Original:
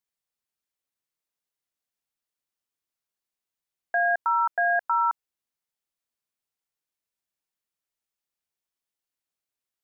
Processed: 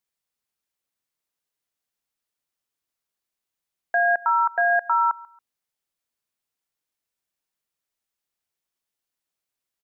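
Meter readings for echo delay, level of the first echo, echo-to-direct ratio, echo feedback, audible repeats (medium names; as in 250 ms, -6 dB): 139 ms, -22.0 dB, -21.5 dB, 27%, 2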